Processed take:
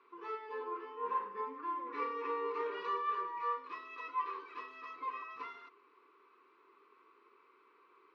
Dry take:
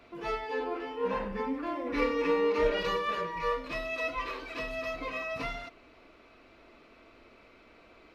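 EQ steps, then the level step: two resonant band-passes 650 Hz, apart 1.4 oct; distance through air 84 m; tilt EQ +4.5 dB/octave; +3.0 dB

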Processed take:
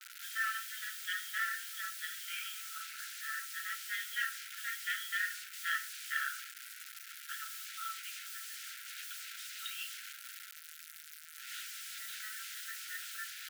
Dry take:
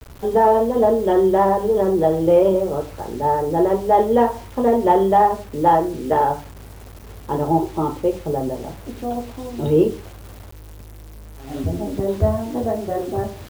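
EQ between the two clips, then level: brick-wall FIR high-pass 1.3 kHz; +1.0 dB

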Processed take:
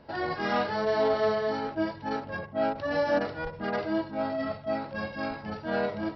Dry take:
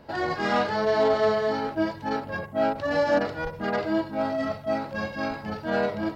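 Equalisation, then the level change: brick-wall FIR low-pass 5.8 kHz; -3.5 dB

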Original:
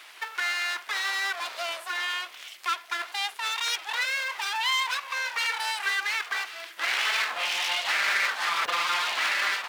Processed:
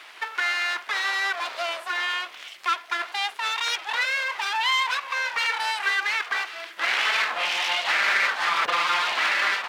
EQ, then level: high-pass 100 Hz; low-pass 3.6 kHz 6 dB/octave; bass shelf 330 Hz +2.5 dB; +4.5 dB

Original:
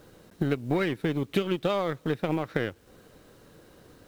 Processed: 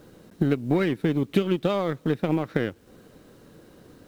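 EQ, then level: peaking EQ 230 Hz +6 dB 1.7 oct; 0.0 dB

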